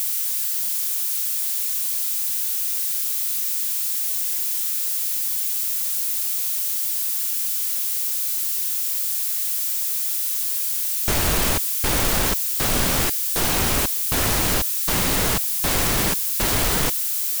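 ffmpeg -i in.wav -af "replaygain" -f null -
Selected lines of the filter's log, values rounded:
track_gain = +6.9 dB
track_peak = 0.299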